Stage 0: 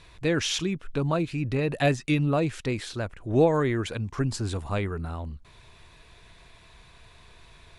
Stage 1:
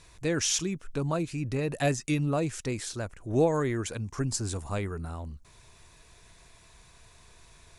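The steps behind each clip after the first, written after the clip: resonant high shelf 4.8 kHz +8 dB, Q 1.5; trim -3.5 dB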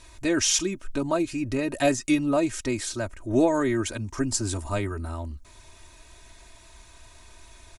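comb 3.2 ms, depth 74%; trim +3 dB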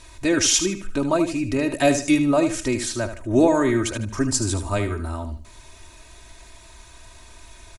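feedback delay 76 ms, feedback 28%, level -10 dB; trim +4 dB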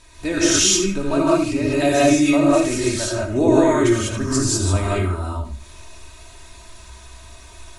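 gated-style reverb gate 220 ms rising, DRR -6.5 dB; trim -4 dB

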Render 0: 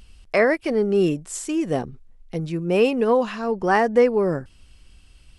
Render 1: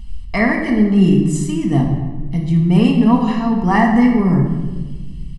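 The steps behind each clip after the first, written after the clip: tone controls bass +11 dB, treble -1 dB; comb 1 ms, depth 84%; simulated room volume 1000 m³, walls mixed, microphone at 1.7 m; trim -2 dB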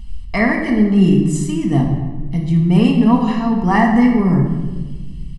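no audible change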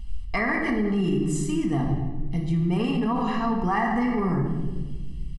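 dynamic bell 1.3 kHz, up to +7 dB, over -34 dBFS, Q 1.3; peak limiter -10 dBFS, peak gain reduction 9.5 dB; comb 2.5 ms, depth 30%; trim -5.5 dB

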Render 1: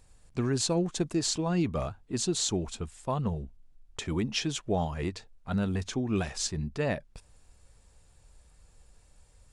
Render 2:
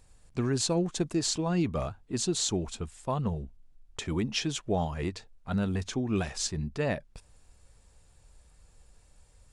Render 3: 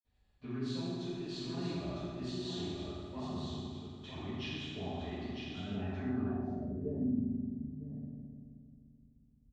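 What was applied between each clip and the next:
no audible change
delay 954 ms -5 dB; reverberation RT60 2.3 s, pre-delay 47 ms; low-pass sweep 3.4 kHz -> 230 Hz, 5.74–7.20 s; trim +8.5 dB

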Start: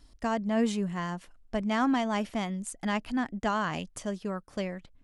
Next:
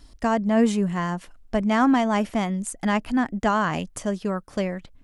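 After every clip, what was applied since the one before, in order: dynamic bell 3.9 kHz, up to -5 dB, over -49 dBFS, Q 0.93; trim +7.5 dB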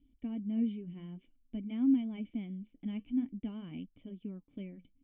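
flange 0.52 Hz, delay 0.3 ms, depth 8.4 ms, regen -72%; cascade formant filter i; trim -3 dB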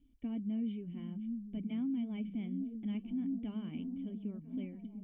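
repeats whose band climbs or falls 699 ms, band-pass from 160 Hz, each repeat 0.7 oct, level -5 dB; peak limiter -30.5 dBFS, peak gain reduction 11.5 dB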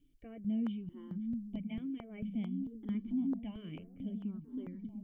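stepped phaser 4.5 Hz 230–2700 Hz; trim +3 dB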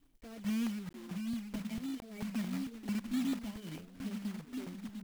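block-companded coder 3-bit

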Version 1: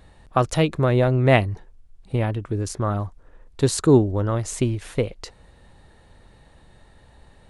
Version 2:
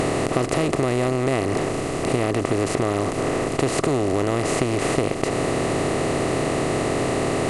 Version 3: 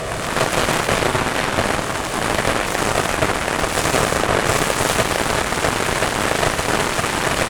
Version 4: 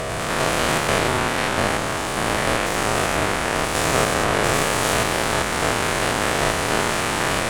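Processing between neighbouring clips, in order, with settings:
spectral levelling over time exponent 0.2; compression, threshold -12 dBFS, peak gain reduction 7 dB; trim -5 dB
comb 1.7 ms, depth 76%; gated-style reverb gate 450 ms flat, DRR -6.5 dB; Chebyshev shaper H 5 -18 dB, 7 -7 dB, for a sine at 0 dBFS; trim -5.5 dB
spectrogram pixelated in time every 100 ms

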